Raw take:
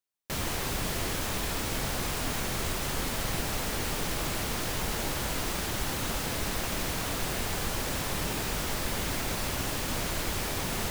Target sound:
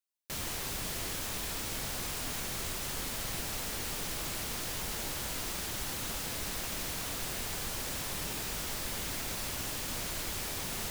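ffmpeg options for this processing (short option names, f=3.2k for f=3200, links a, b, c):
-af "highshelf=f=2.6k:g=7,volume=-8.5dB"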